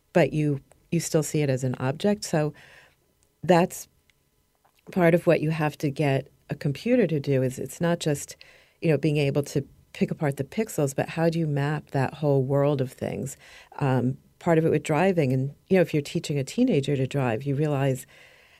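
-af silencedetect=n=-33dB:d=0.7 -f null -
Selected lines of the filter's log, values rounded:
silence_start: 2.50
silence_end: 3.44 | silence_duration: 0.94
silence_start: 3.82
silence_end: 4.89 | silence_duration: 1.07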